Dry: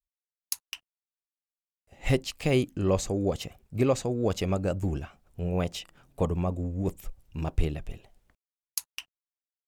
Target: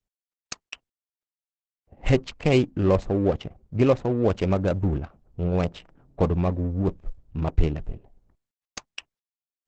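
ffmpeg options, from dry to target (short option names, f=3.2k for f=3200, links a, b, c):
-af "adynamicsmooth=sensitivity=5.5:basefreq=680,volume=5.5dB" -ar 48000 -c:a libopus -b:a 12k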